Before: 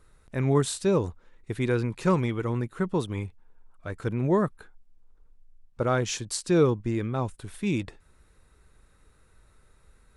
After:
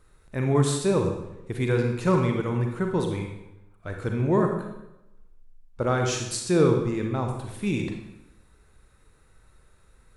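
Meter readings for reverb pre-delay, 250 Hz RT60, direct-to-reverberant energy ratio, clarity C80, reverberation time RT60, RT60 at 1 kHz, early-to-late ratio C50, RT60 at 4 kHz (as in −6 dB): 34 ms, 0.95 s, 2.5 dB, 7.5 dB, 0.90 s, 0.90 s, 4.5 dB, 0.75 s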